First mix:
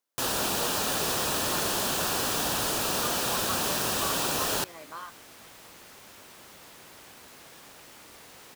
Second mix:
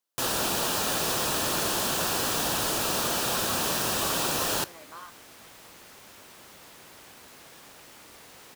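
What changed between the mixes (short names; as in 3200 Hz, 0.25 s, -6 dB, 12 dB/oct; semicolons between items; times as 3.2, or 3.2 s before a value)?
speech -4.5 dB; reverb: on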